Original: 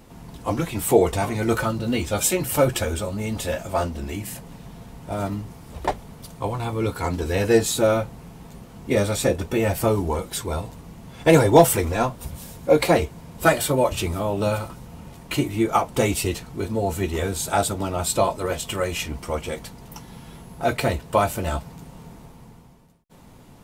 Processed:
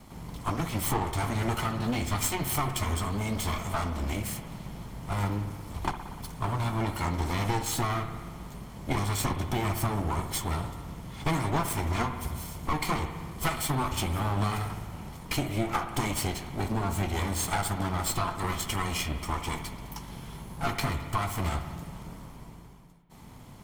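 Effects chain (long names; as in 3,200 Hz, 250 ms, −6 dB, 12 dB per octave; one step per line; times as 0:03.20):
lower of the sound and its delayed copy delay 0.94 ms
downward compressor 5 to 1, threshold −26 dBFS, peak gain reduction 14.5 dB
spring reverb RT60 1.6 s, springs 59 ms, chirp 65 ms, DRR 8 dB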